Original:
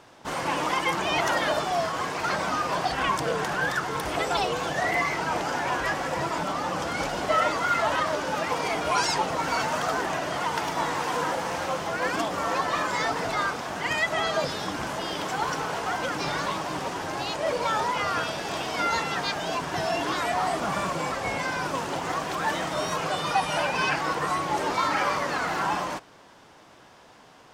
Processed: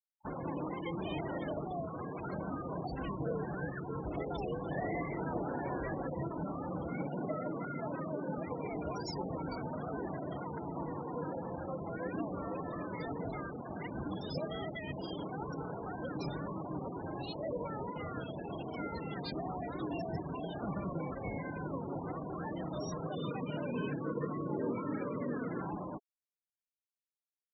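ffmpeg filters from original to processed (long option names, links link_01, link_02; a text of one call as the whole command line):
ffmpeg -i in.wav -filter_complex "[0:a]asplit=3[link_01][link_02][link_03];[link_01]afade=type=out:start_time=4.71:duration=0.02[link_04];[link_02]equalizer=frequency=1500:width=0.31:gain=7.5,afade=type=in:start_time=4.71:duration=0.02,afade=type=out:start_time=6.08:duration=0.02[link_05];[link_03]afade=type=in:start_time=6.08:duration=0.02[link_06];[link_04][link_05][link_06]amix=inputs=3:normalize=0,asettb=1/sr,asplit=3[link_07][link_08][link_09];[link_07]atrim=end=6.904[link_10];[link_08]atrim=start=6.9:end=8.38,asetpts=PTS-STARTPTS,afade=type=in:duration=0.004:curve=qsin,afade=type=out:start_time=1.476:duration=0.004:curve=qsin,lowshelf=frequency=100:width_type=q:width=1.5:gain=-12.5[link_11];[link_09]atrim=start=8.376[link_12];[link_10][link_11]acrossfade=duration=0.004:curve1=hsin:curve2=qsin[link_13];[link_13][link_12]acrossfade=duration=0.004:curve1=qsin:curve2=hsin,asettb=1/sr,asplit=3[link_14][link_15][link_16];[link_14]atrim=end=23.154[link_17];[link_15]atrim=start=23.15:end=25.61,asetpts=PTS-STARTPTS,afade=type=in:duration=0.004:curve=qsin,afade=type=out:start_time=2.456:duration=0.004:curve=qsin,highpass=120,equalizer=frequency=120:width_type=q:width=4:gain=7,equalizer=frequency=240:width_type=q:width=4:gain=9,equalizer=frequency=460:width_type=q:width=4:gain=6,equalizer=frequency=780:width_type=q:width=4:gain=-9,equalizer=frequency=2600:width_type=q:width=4:gain=-3,lowpass=frequency=4700:width=0.5412,lowpass=frequency=4700:width=1.3066[link_18];[link_16]atrim=start=25.606[link_19];[link_17][link_18]acrossfade=duration=0.004:curve1=hsin:curve2=qsin[link_20];[link_20][link_19]acrossfade=duration=0.004:curve1=qsin:curve2=hsin,asplit=5[link_21][link_22][link_23][link_24][link_25];[link_21]atrim=end=13.902[link_26];[link_22]atrim=start=13.898:end=14.922,asetpts=PTS-STARTPTS,areverse[link_27];[link_23]atrim=start=14.918:end=19.322[link_28];[link_24]atrim=start=19.318:end=20.622,asetpts=PTS-STARTPTS,areverse[link_29];[link_25]atrim=start=20.618[link_30];[link_26][link_27]acrossfade=duration=0.004:curve1=hsin:curve2=hsin[link_31];[link_31][link_28]acrossfade=duration=0.004:curve1=hsin:curve2=hsin[link_32];[link_32][link_29]acrossfade=duration=0.004:curve1=hsin:curve2=hsin[link_33];[link_33][link_30]acrossfade=duration=0.004:curve1=hsin:curve2=hsin,acrossover=split=450[link_34][link_35];[link_35]acompressor=threshold=-40dB:ratio=10[link_36];[link_34][link_36]amix=inputs=2:normalize=0,afftfilt=real='re*gte(hypot(re,im),0.02)':imag='im*gte(hypot(re,im),0.02)':win_size=1024:overlap=0.75,bass=frequency=250:gain=1,treble=frequency=4000:gain=12,volume=-3.5dB" out.wav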